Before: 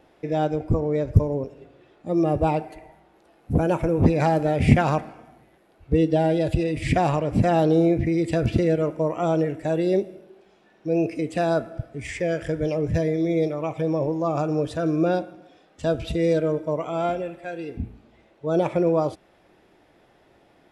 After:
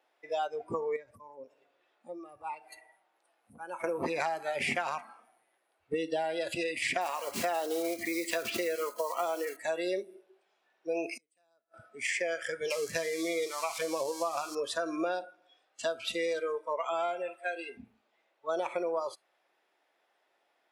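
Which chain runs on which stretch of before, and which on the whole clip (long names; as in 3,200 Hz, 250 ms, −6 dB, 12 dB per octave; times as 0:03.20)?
0:00.96–0:03.84: downward compressor 3 to 1, threshold −35 dBFS + parametric band 400 Hz −4 dB 0.25 octaves
0:07.01–0:09.58: one scale factor per block 5 bits + parametric band 140 Hz −10 dB 0.45 octaves
0:11.13–0:11.74: bass and treble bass +1 dB, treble +7 dB + gate with flip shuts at −26 dBFS, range −34 dB
0:12.70–0:14.55: spike at every zero crossing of −28.5 dBFS + low-pass filter 8,000 Hz + high-shelf EQ 3,800 Hz +5 dB
whole clip: noise reduction from a noise print of the clip's start 17 dB; high-pass filter 740 Hz 12 dB per octave; downward compressor 10 to 1, threshold −34 dBFS; level +5.5 dB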